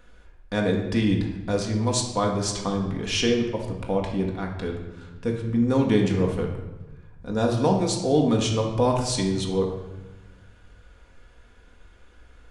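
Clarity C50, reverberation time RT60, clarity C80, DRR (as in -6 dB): 5.0 dB, 1.1 s, 7.5 dB, -0.5 dB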